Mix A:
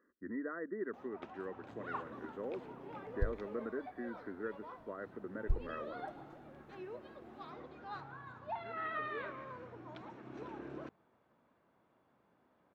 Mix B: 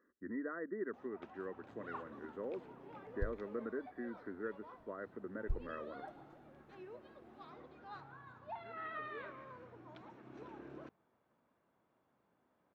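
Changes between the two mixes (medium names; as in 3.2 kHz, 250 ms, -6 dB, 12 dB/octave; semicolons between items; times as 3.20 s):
first sound -5.0 dB; second sound -3.0 dB; reverb: off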